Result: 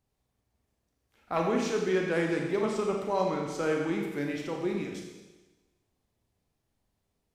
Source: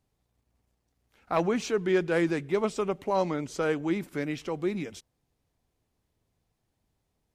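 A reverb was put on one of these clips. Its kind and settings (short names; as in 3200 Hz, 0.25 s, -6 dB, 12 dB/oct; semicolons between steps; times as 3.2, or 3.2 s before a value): Schroeder reverb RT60 1.2 s, combs from 28 ms, DRR 0.5 dB; gain -3.5 dB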